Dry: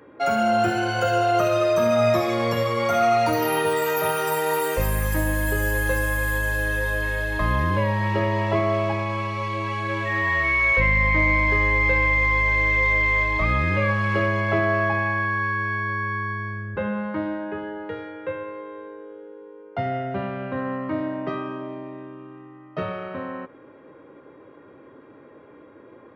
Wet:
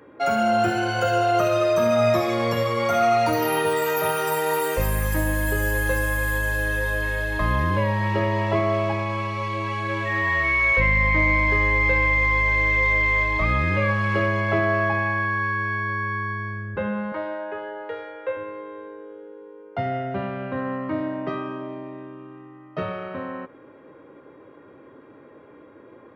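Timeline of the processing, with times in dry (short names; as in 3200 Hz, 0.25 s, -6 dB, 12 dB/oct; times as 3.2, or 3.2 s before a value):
17.12–18.37 resonant low shelf 350 Hz -12.5 dB, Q 1.5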